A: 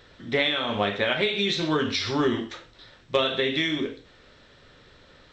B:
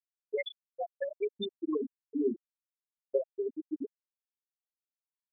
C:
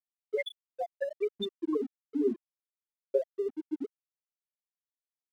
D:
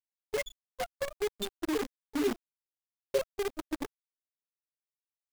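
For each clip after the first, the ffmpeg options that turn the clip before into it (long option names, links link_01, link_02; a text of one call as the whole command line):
ffmpeg -i in.wav -af "afftfilt=real='re*gte(hypot(re,im),0.447)':imag='im*gte(hypot(re,im),0.447)':win_size=1024:overlap=0.75,volume=-4.5dB" out.wav
ffmpeg -i in.wav -af "aeval=exprs='sgn(val(0))*max(abs(val(0))-0.00133,0)':channel_layout=same,volume=2dB" out.wav
ffmpeg -i in.wav -af "acrusher=bits=6:dc=4:mix=0:aa=0.000001,volume=-1.5dB" out.wav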